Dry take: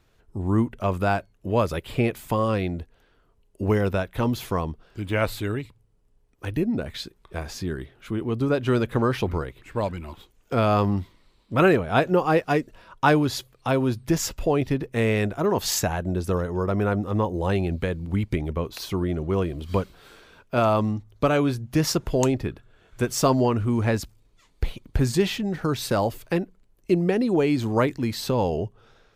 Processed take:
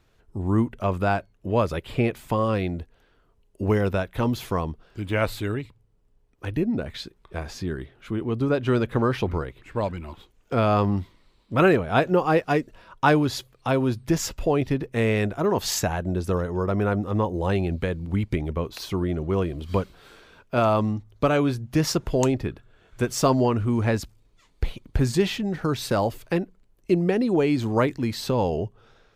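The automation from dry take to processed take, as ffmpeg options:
ffmpeg -i in.wav -af "asetnsamples=nb_out_samples=441:pad=0,asendcmd='0.84 lowpass f 5700;2.56 lowpass f 11000;5.54 lowpass f 5600;10.94 lowpass f 9500',lowpass=frequency=11000:poles=1" out.wav

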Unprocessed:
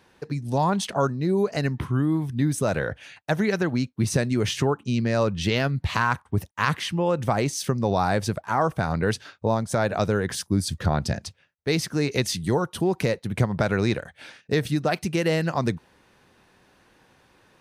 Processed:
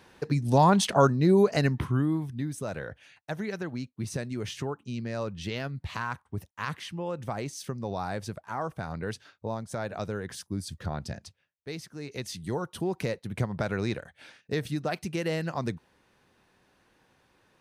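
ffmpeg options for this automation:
ffmpeg -i in.wav -af "volume=12.5dB,afade=type=out:start_time=1.31:duration=1.16:silence=0.223872,afade=type=out:start_time=11.24:duration=0.7:silence=0.473151,afade=type=in:start_time=11.94:duration=0.81:silence=0.316228" out.wav

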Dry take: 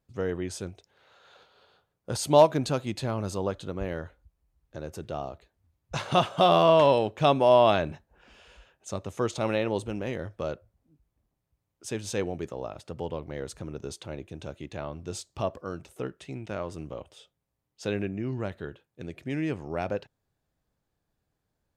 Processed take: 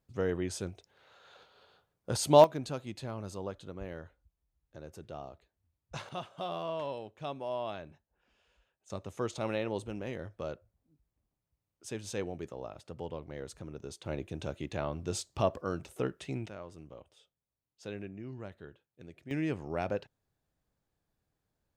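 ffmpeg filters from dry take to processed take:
ffmpeg -i in.wav -af "asetnsamples=nb_out_samples=441:pad=0,asendcmd='2.44 volume volume -9.5dB;6.09 volume volume -17.5dB;8.9 volume volume -6.5dB;14.06 volume volume 1dB;16.49 volume volume -11.5dB;19.31 volume volume -3dB',volume=-1.5dB" out.wav

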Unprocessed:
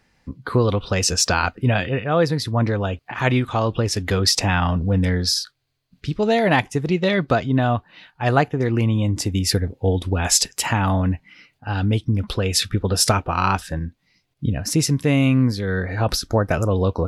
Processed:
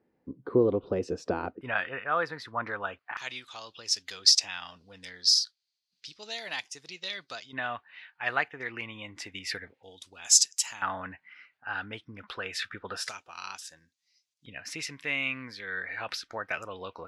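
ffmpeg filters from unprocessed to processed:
ffmpeg -i in.wav -af "asetnsamples=nb_out_samples=441:pad=0,asendcmd='1.61 bandpass f 1400;3.17 bandpass f 5200;7.53 bandpass f 2000;9.83 bandpass f 6400;10.82 bandpass f 1600;13.09 bandpass f 6400;14.46 bandpass f 2200',bandpass=frequency=370:width_type=q:width=2.1:csg=0" out.wav

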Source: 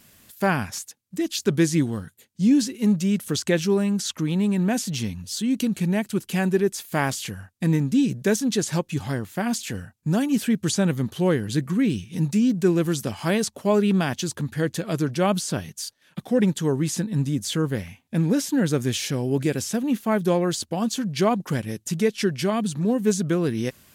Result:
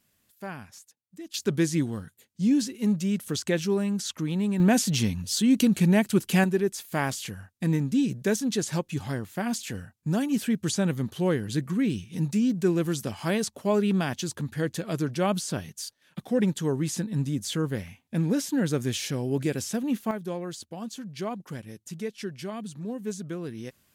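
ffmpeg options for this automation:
ffmpeg -i in.wav -af "asetnsamples=nb_out_samples=441:pad=0,asendcmd='1.34 volume volume -4.5dB;4.6 volume volume 2.5dB;6.44 volume volume -4dB;20.11 volume volume -12dB',volume=-16dB" out.wav

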